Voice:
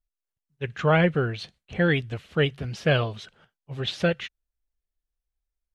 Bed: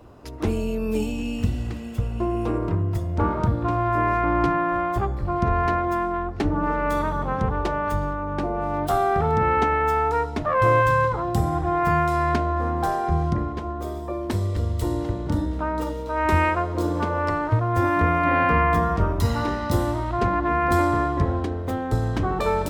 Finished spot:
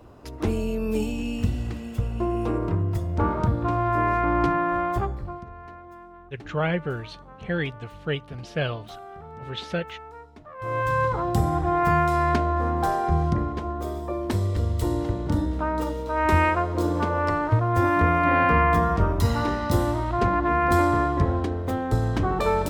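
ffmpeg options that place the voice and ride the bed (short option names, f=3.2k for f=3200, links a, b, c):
-filter_complex "[0:a]adelay=5700,volume=-5dB[a];[1:a]volume=19.5dB,afade=t=out:st=4.97:d=0.48:silence=0.105925,afade=t=in:st=10.58:d=0.6:silence=0.0944061[b];[a][b]amix=inputs=2:normalize=0"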